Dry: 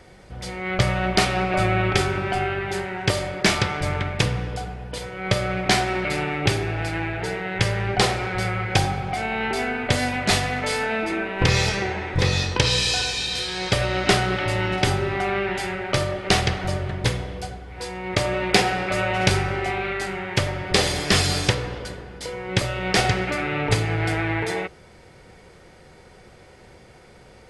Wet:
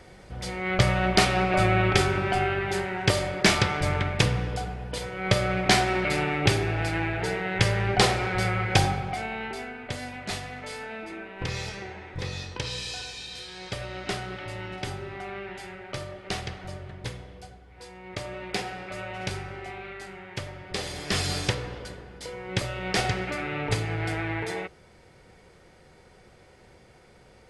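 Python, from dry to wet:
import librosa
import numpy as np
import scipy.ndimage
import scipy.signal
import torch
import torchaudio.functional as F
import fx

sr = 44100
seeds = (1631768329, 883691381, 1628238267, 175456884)

y = fx.gain(x, sr, db=fx.line((8.87, -1.0), (9.74, -13.0), (20.8, -13.0), (21.31, -6.0)))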